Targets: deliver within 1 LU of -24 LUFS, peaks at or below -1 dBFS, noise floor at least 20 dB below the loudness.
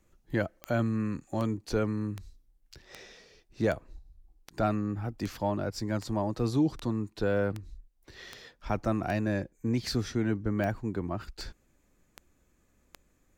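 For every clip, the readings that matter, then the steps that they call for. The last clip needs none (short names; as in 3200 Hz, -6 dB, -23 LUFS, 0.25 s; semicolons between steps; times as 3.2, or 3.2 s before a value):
clicks 17; loudness -31.5 LUFS; peak -15.5 dBFS; loudness target -24.0 LUFS
-> de-click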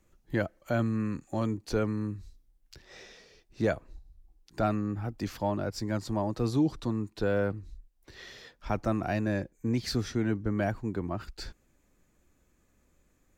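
clicks 0; loudness -31.5 LUFS; peak -15.5 dBFS; loudness target -24.0 LUFS
-> gain +7.5 dB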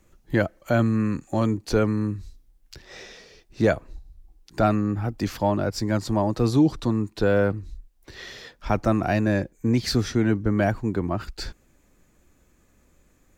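loudness -24.0 LUFS; peak -8.0 dBFS; noise floor -62 dBFS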